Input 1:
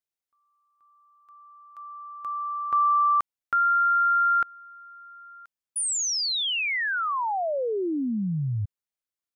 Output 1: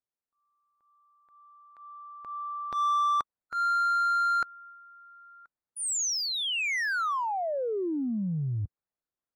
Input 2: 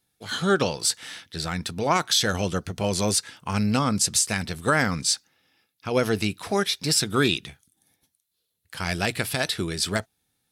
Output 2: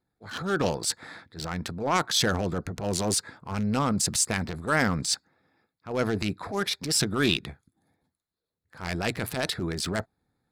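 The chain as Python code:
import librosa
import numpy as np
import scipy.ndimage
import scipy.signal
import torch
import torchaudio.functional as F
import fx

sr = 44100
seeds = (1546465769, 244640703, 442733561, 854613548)

p1 = fx.wiener(x, sr, points=15)
p2 = fx.hpss(p1, sr, part='harmonic', gain_db=-5)
p3 = fx.transient(p2, sr, attack_db=-10, sustain_db=4)
p4 = 10.0 ** (-25.5 / 20.0) * np.tanh(p3 / 10.0 ** (-25.5 / 20.0))
y = p3 + F.gain(torch.from_numpy(p4), -9.5).numpy()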